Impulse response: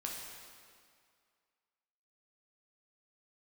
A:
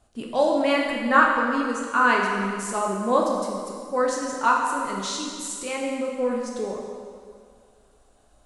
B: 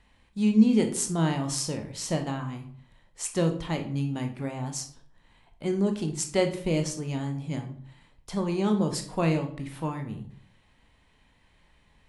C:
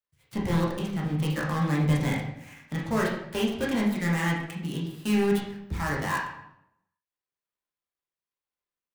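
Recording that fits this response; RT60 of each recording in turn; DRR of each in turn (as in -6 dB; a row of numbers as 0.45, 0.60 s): A; 2.1, 0.55, 0.80 s; -2.0, 4.5, -4.0 dB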